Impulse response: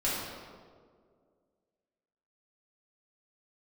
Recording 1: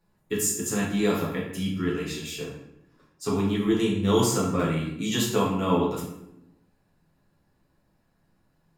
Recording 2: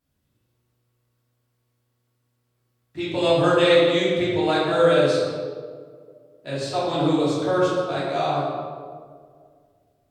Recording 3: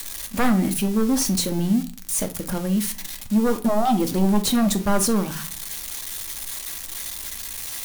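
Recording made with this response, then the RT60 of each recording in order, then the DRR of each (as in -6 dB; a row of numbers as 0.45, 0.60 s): 2; 0.80 s, 2.0 s, not exponential; -5.5, -9.5, 5.5 dB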